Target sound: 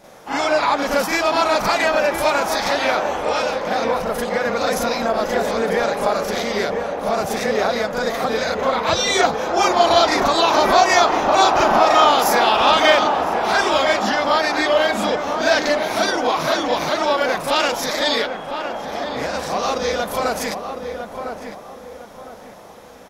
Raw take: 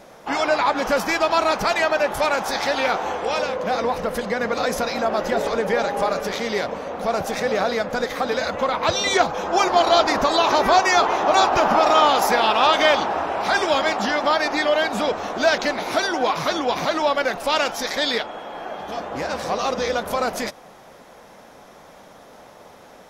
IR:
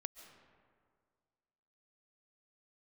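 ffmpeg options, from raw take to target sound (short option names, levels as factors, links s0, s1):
-filter_complex "[0:a]highshelf=f=6200:g=4.5,asplit=2[s0][s1];[s1]adelay=1006,lowpass=f=1400:p=1,volume=0.501,asplit=2[s2][s3];[s3]adelay=1006,lowpass=f=1400:p=1,volume=0.37,asplit=2[s4][s5];[s5]adelay=1006,lowpass=f=1400:p=1,volume=0.37,asplit=2[s6][s7];[s7]adelay=1006,lowpass=f=1400:p=1,volume=0.37[s8];[s0][s2][s4][s6][s8]amix=inputs=5:normalize=0,asplit=2[s9][s10];[1:a]atrim=start_sample=2205,atrim=end_sample=4410,adelay=39[s11];[s10][s11]afir=irnorm=-1:irlink=0,volume=2.82[s12];[s9][s12]amix=inputs=2:normalize=0,volume=0.596"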